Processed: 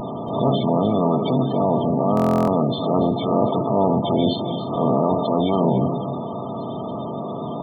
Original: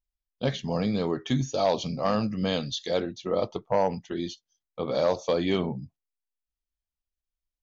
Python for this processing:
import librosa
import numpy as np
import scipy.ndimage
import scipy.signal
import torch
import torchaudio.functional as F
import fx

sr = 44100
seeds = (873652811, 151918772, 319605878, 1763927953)

y = fx.bin_compress(x, sr, power=0.2)
y = fx.peak_eq(y, sr, hz=510.0, db=-3.5, octaves=0.46)
y = fx.notch(y, sr, hz=550.0, q=12.0)
y = fx.transient(y, sr, attack_db=-8, sustain_db=0)
y = fx.echo_feedback(y, sr, ms=256, feedback_pct=29, wet_db=-14)
y = fx.rider(y, sr, range_db=4, speed_s=0.5)
y = fx.lowpass(y, sr, hz=3700.0, slope=6, at=(1.32, 3.37))
y = fx.spec_topn(y, sr, count=32)
y = y + 10.0 ** (-14.0 / 20.0) * np.pad(y, (int(285 * sr / 1000.0), 0))[:len(y)]
y = fx.buffer_glitch(y, sr, at_s=(2.15,), block=1024, repeats=13)
y = fx.pre_swell(y, sr, db_per_s=61.0)
y = y * librosa.db_to_amplitude(2.5)